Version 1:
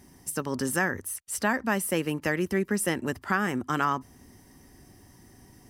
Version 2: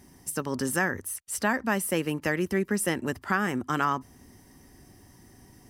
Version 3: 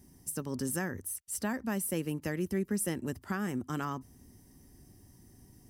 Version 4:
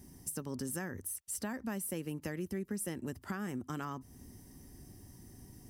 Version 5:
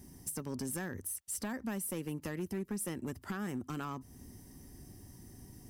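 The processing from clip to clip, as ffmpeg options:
ffmpeg -i in.wav -af anull out.wav
ffmpeg -i in.wav -af "equalizer=frequency=1500:width=0.3:gain=-11,volume=-1.5dB" out.wav
ffmpeg -i in.wav -af "acompressor=threshold=-43dB:ratio=2.5,volume=3.5dB" out.wav
ffmpeg -i in.wav -af "asoftclip=type=hard:threshold=-32.5dB,volume=1dB" out.wav

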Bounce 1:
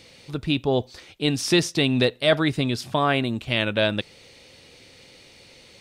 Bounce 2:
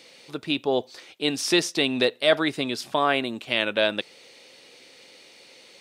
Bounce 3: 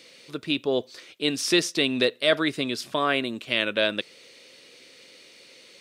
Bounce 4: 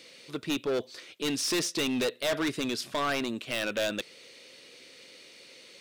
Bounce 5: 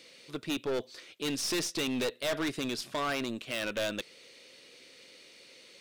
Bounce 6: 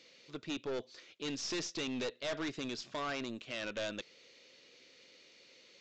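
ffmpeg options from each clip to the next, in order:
ffmpeg -i in.wav -af "highpass=300" out.wav
ffmpeg -i in.wav -af "equalizer=frequency=810:width_type=o:width=0.4:gain=-10" out.wav
ffmpeg -i in.wav -af "volume=24dB,asoftclip=hard,volume=-24dB,volume=-1dB" out.wav
ffmpeg -i in.wav -af "aeval=exprs='0.0596*(cos(1*acos(clip(val(0)/0.0596,-1,1)))-cos(1*PI/2))+0.0075*(cos(2*acos(clip(val(0)/0.0596,-1,1)))-cos(2*PI/2))':channel_layout=same,volume=-3dB" out.wav
ffmpeg -i in.wav -af "aresample=16000,aresample=44100,volume=-6dB" out.wav

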